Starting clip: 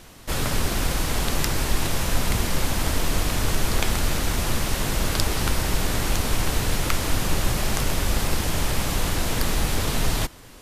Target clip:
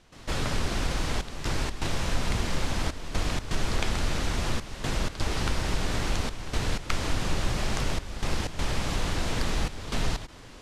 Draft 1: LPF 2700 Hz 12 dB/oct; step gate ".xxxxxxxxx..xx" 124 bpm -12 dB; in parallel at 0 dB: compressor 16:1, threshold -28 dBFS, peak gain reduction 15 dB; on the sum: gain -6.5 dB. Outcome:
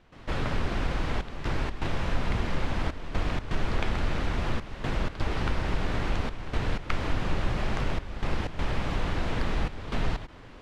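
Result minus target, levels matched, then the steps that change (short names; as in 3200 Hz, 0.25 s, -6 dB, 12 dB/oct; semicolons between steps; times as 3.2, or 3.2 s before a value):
8000 Hz band -12.5 dB
change: LPF 6500 Hz 12 dB/oct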